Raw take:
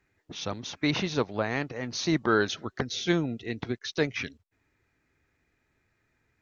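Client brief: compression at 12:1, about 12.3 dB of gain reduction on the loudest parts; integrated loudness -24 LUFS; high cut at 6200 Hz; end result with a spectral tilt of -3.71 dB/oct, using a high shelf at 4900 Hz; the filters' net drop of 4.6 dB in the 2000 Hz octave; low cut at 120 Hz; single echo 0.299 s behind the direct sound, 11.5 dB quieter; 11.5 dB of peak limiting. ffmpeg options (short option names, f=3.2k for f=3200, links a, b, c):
-af "highpass=120,lowpass=6.2k,equalizer=f=2k:t=o:g=-7,highshelf=f=4.9k:g=6,acompressor=threshold=-33dB:ratio=12,alimiter=level_in=8dB:limit=-24dB:level=0:latency=1,volume=-8dB,aecho=1:1:299:0.266,volume=18dB"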